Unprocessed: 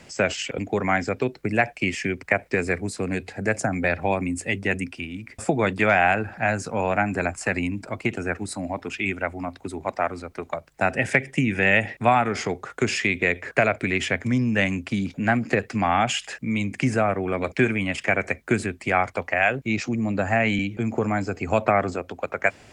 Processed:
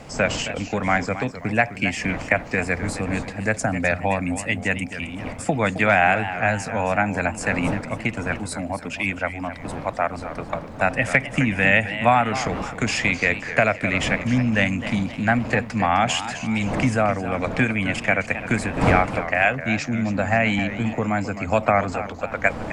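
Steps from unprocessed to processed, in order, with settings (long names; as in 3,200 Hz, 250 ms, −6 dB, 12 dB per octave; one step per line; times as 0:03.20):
wind on the microphone 520 Hz −35 dBFS
parametric band 380 Hz −14.5 dB 0.26 octaves
feedback echo with a swinging delay time 263 ms, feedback 42%, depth 156 cents, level −12 dB
level +2 dB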